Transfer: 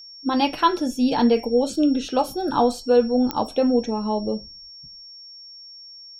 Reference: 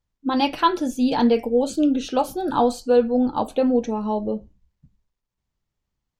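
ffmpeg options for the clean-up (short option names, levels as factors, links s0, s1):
-af "adeclick=t=4,bandreject=f=5500:w=30"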